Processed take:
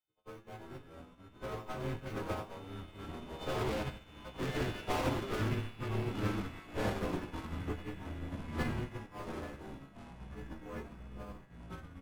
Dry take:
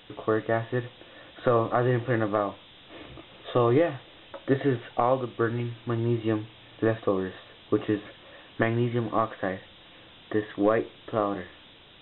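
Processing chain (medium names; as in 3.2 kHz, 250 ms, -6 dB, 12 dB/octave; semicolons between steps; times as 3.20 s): partials quantised in pitch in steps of 3 st; Doppler pass-by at 4.61 s, 7 m/s, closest 6.1 m; in parallel at -8 dB: decimation with a swept rate 9×, swing 60% 1 Hz; on the sum: valve stage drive 34 dB, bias 0.5; bass shelf 100 Hz +10.5 dB; on a send: frequency-shifting echo 90 ms, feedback 60%, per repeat -110 Hz, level -8 dB; on the sum: ever faster or slower copies 241 ms, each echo -5 st, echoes 2; band-stop 1.8 kHz, Q 24; upward expansion 2.5:1, over -54 dBFS; trim +2 dB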